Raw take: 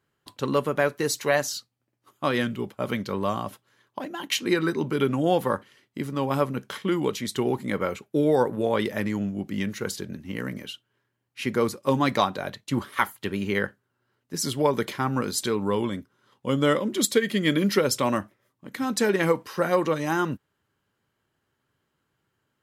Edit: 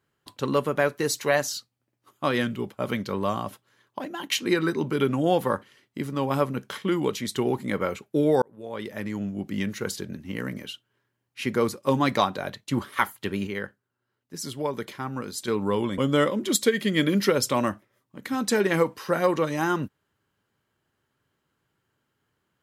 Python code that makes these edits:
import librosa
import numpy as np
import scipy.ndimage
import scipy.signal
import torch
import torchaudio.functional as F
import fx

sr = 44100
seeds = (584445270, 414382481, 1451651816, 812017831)

y = fx.edit(x, sr, fx.fade_in_span(start_s=8.42, length_s=1.08),
    fx.clip_gain(start_s=13.47, length_s=2.01, db=-6.5),
    fx.cut(start_s=15.98, length_s=0.49), tone=tone)